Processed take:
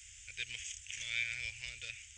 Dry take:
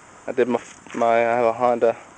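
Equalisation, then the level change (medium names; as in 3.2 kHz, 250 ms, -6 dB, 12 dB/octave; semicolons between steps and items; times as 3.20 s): inverse Chebyshev band-stop 170–1200 Hz, stop band 50 dB; treble shelf 6 kHz -6 dB; +3.5 dB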